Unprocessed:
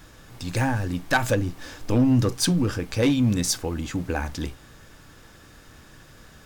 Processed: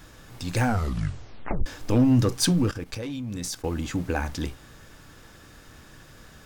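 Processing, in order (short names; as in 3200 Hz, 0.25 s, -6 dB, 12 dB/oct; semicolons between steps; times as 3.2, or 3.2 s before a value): 0.59 tape stop 1.07 s; 2.71–3.64 level quantiser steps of 16 dB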